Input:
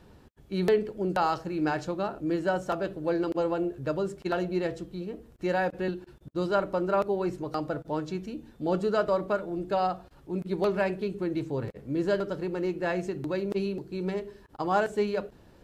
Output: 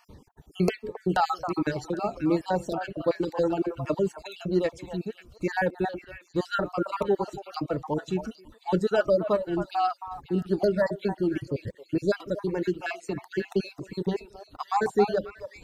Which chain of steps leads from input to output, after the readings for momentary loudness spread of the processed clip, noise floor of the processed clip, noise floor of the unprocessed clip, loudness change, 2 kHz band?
10 LU, −58 dBFS, −55 dBFS, +1.5 dB, +1.0 dB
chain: time-frequency cells dropped at random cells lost 43%
reverb reduction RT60 0.8 s
echo through a band-pass that steps 269 ms, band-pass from 880 Hz, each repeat 1.4 octaves, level −5 dB
phaser whose notches keep moving one way falling 1.3 Hz
level +6 dB

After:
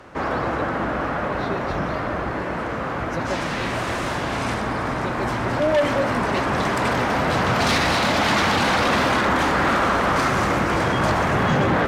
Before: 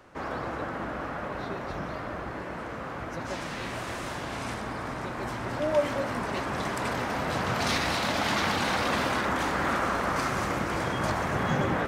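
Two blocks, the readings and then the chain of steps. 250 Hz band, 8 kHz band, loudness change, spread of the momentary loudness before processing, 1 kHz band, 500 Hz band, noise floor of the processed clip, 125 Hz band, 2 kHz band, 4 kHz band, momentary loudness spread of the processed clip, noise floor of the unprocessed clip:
+9.0 dB, +6.0 dB, +8.5 dB, 9 LU, +8.5 dB, +8.5 dB, −27 dBFS, +9.0 dB, +8.5 dB, +7.5 dB, 7 LU, −37 dBFS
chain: high-shelf EQ 6,300 Hz −6.5 dB
harmonic generator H 5 −13 dB, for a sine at −14 dBFS
level +4 dB

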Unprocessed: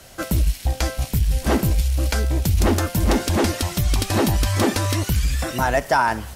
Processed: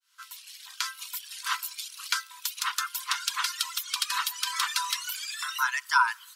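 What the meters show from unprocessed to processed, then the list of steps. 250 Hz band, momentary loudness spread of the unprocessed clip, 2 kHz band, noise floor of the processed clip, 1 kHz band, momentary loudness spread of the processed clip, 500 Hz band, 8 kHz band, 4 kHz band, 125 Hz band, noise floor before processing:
below −40 dB, 4 LU, −2.0 dB, −52 dBFS, −6.0 dB, 13 LU, below −40 dB, −3.5 dB, −0.5 dB, below −40 dB, −38 dBFS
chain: fade in at the beginning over 1.08 s
reverb reduction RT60 1.7 s
Chebyshev high-pass with heavy ripple 970 Hz, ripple 6 dB
level +3 dB

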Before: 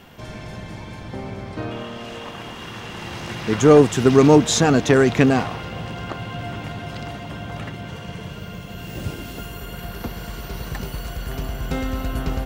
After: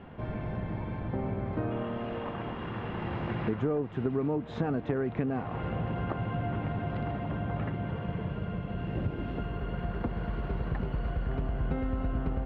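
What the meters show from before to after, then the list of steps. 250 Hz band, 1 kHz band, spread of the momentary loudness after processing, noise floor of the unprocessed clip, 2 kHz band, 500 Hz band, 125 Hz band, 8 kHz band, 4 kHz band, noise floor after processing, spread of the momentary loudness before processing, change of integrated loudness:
−11.5 dB, −10.5 dB, 5 LU, −36 dBFS, −13.5 dB, −14.5 dB, −6.5 dB, below −40 dB, −20.5 dB, −39 dBFS, 20 LU, −13.5 dB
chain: parametric band 11,000 Hz −11 dB 2.9 octaves
downward compressor 10 to 1, threshold −27 dBFS, peak gain reduction 19.5 dB
high-frequency loss of the air 470 metres
level +1 dB

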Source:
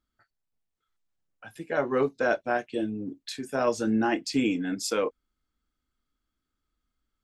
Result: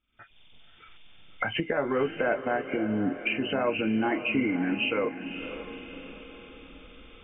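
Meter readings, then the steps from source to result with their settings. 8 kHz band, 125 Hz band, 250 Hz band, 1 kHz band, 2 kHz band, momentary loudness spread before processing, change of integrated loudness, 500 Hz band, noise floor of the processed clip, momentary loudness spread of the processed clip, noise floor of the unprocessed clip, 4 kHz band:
below −40 dB, +2.0 dB, +0.5 dB, −0.5 dB, +3.5 dB, 8 LU, −0.5 dB, −1.0 dB, −54 dBFS, 17 LU, −84 dBFS, +2.5 dB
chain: hearing-aid frequency compression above 2,000 Hz 4 to 1
camcorder AGC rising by 78 dB per second
feedback delay with all-pass diffusion 545 ms, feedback 50%, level −10.5 dB
level −2 dB

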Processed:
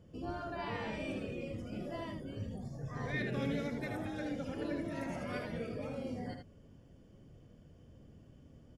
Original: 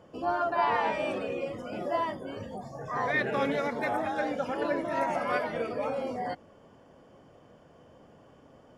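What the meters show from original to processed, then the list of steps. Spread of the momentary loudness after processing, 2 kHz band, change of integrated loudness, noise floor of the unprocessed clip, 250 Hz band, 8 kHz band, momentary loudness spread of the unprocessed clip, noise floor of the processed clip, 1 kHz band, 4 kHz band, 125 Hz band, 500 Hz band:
23 LU, −10.5 dB, −9.0 dB, −57 dBFS, −3.0 dB, can't be measured, 10 LU, −60 dBFS, −16.5 dB, −6.5 dB, +3.0 dB, −11.0 dB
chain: guitar amp tone stack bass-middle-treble 10-0-1
single-tap delay 78 ms −6 dB
level +15 dB

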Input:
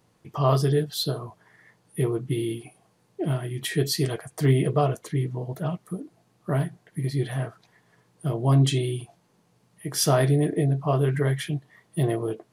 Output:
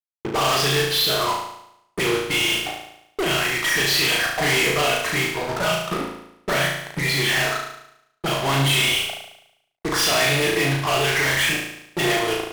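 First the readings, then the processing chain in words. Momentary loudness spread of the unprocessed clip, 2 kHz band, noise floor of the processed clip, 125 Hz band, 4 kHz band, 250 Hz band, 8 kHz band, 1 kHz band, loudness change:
14 LU, +18.5 dB, −67 dBFS, −5.0 dB, +14.0 dB, −0.5 dB, +9.0 dB, +8.5 dB, +5.5 dB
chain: envelope filter 400–2,600 Hz, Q 2.6, up, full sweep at −24 dBFS
fuzz pedal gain 57 dB, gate −57 dBFS
flutter between parallel walls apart 6.2 metres, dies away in 0.78 s
level −7.5 dB

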